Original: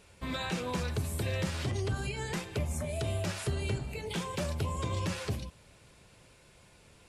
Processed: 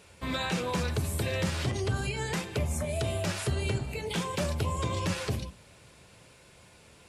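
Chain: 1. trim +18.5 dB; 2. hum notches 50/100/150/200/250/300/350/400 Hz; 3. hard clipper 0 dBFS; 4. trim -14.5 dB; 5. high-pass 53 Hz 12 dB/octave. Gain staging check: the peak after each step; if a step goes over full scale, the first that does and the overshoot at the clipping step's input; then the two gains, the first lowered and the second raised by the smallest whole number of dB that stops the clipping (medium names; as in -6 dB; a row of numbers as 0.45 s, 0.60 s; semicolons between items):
-2.5 dBFS, -2.5 dBFS, -2.5 dBFS, -17.0 dBFS, -17.5 dBFS; nothing clips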